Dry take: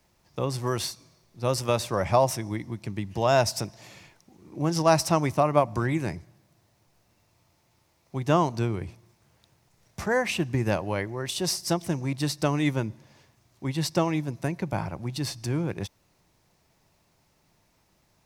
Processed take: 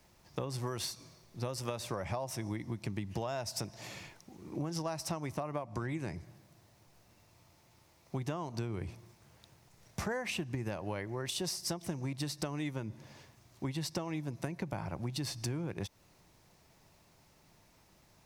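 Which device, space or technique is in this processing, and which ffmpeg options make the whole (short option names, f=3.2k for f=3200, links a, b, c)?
serial compression, leveller first: -filter_complex "[0:a]asettb=1/sr,asplit=3[a][b][c];[a]atrim=end=5.584[d];[b]atrim=start=5.58:end=6.15,asetpts=PTS-STARTPTS,afade=t=in:d=0.004:c=qsin,afade=t=out:st=0.566:d=0.004:c=qsin,lowpass=11k[e];[c]atrim=start=6.146[f];[d][e]acrossfade=d=0.004:c1=hsin:c2=qsin[g];[g][f]acrossfade=d=0.004:c1=qsin:c2=hsin,acompressor=threshold=-25dB:ratio=2.5,acompressor=threshold=-36dB:ratio=6,volume=2dB"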